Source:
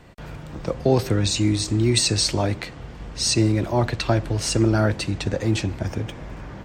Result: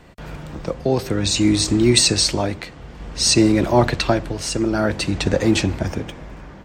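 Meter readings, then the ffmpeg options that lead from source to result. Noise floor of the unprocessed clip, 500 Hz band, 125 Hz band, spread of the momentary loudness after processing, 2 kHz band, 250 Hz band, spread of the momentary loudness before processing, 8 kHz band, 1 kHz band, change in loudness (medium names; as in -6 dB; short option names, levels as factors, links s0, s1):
-39 dBFS, +3.5 dB, -1.0 dB, 20 LU, +4.5 dB, +4.5 dB, 17 LU, +4.5 dB, +4.0 dB, +3.5 dB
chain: -af "tremolo=f=0.55:d=0.6,equalizer=f=110:w=7.1:g=-11,dynaudnorm=f=120:g=5:m=1.88,volume=1.26"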